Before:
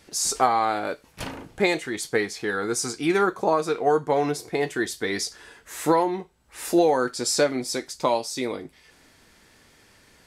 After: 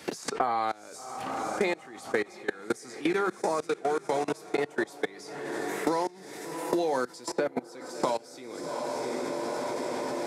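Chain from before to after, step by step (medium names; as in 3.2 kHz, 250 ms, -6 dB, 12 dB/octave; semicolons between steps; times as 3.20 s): hum notches 50/100/150/200 Hz; echo that smears into a reverb 736 ms, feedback 54%, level -10 dB; level held to a coarse grid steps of 24 dB; high-pass 130 Hz 12 dB/octave; three bands compressed up and down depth 100%; trim -2 dB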